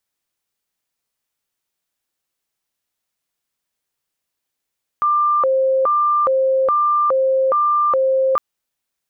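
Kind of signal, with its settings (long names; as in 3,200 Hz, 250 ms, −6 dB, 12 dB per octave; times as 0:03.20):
siren hi-lo 529–1,190 Hz 1.2 per second sine −13 dBFS 3.36 s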